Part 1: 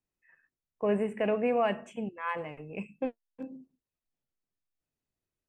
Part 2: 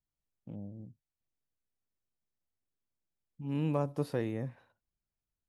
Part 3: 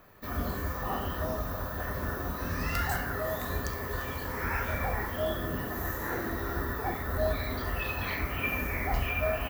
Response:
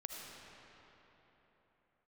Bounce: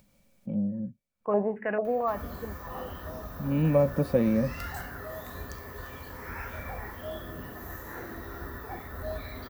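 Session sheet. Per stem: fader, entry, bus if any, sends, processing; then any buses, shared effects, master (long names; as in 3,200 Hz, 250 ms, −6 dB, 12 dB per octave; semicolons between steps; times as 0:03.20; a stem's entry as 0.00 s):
−1.0 dB, 0.45 s, no send, low-pass on a step sequencer 4.5 Hz 490–1,600 Hz; automatic ducking −17 dB, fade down 1.95 s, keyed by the second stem
+1.0 dB, 0.00 s, no send, hollow resonant body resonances 210/540/2,300 Hz, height 17 dB, ringing for 60 ms
−7.0 dB, 1.85 s, no send, upward compression, threshold −37 dBFS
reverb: not used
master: upward compression, threshold −46 dBFS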